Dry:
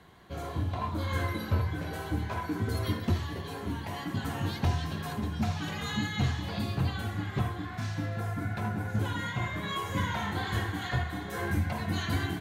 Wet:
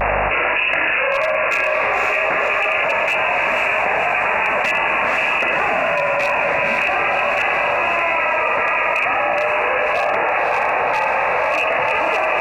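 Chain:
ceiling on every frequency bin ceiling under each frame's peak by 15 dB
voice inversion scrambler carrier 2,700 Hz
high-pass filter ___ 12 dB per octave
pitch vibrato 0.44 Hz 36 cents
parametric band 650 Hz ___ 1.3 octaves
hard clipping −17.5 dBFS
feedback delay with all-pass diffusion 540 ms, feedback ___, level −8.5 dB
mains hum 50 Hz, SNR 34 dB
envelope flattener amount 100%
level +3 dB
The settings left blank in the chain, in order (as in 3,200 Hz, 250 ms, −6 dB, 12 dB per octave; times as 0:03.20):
88 Hz, +14.5 dB, 68%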